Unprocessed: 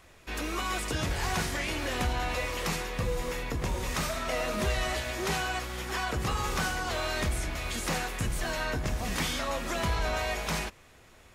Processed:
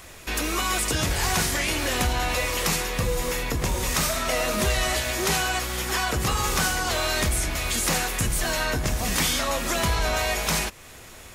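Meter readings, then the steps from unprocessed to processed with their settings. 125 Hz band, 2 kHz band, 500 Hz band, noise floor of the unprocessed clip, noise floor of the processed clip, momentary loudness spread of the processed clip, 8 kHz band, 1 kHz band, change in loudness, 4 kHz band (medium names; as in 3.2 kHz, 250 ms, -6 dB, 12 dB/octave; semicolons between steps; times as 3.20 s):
+5.0 dB, +6.5 dB, +5.5 dB, -56 dBFS, -44 dBFS, 4 LU, +12.0 dB, +5.5 dB, +7.0 dB, +8.5 dB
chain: treble shelf 5.3 kHz +10 dB; in parallel at +2 dB: compression, threshold -41 dBFS, peak gain reduction 15.5 dB; on the sum: trim +3 dB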